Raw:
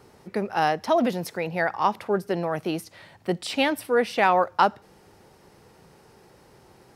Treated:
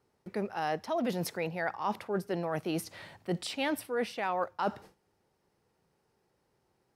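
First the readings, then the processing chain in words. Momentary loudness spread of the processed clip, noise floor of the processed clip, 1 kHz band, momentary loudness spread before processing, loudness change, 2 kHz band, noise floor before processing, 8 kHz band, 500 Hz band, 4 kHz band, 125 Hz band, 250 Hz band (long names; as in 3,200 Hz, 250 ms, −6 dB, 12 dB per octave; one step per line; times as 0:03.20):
5 LU, −76 dBFS, −11.0 dB, 10 LU, −9.5 dB, −10.0 dB, −55 dBFS, −4.0 dB, −9.0 dB, −8.0 dB, −5.0 dB, −7.0 dB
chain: noise gate with hold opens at −40 dBFS
reversed playback
downward compressor 6 to 1, threshold −29 dBFS, peak gain reduction 15 dB
reversed playback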